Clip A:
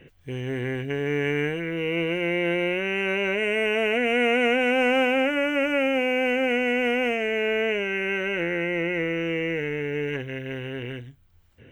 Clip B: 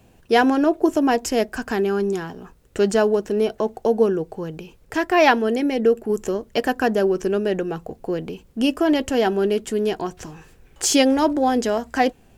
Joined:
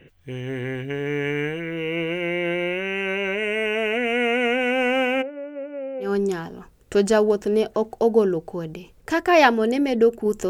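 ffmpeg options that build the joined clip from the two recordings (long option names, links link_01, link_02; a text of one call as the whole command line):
ffmpeg -i cue0.wav -i cue1.wav -filter_complex "[0:a]asplit=3[link_01][link_02][link_03];[link_01]afade=type=out:start_time=5.21:duration=0.02[link_04];[link_02]bandpass=frequency=440:width_type=q:width=3.8:csg=0,afade=type=in:start_time=5.21:duration=0.02,afade=type=out:start_time=6.13:duration=0.02[link_05];[link_03]afade=type=in:start_time=6.13:duration=0.02[link_06];[link_04][link_05][link_06]amix=inputs=3:normalize=0,apad=whole_dur=10.49,atrim=end=10.49,atrim=end=6.13,asetpts=PTS-STARTPTS[link_07];[1:a]atrim=start=1.83:end=6.33,asetpts=PTS-STARTPTS[link_08];[link_07][link_08]acrossfade=duration=0.14:curve1=tri:curve2=tri" out.wav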